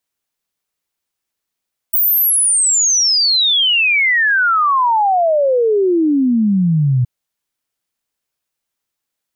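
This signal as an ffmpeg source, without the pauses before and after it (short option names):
-f lavfi -i "aevalsrc='0.299*clip(min(t,5.12-t)/0.01,0,1)*sin(2*PI*16000*5.12/log(120/16000)*(exp(log(120/16000)*t/5.12)-1))':d=5.12:s=44100"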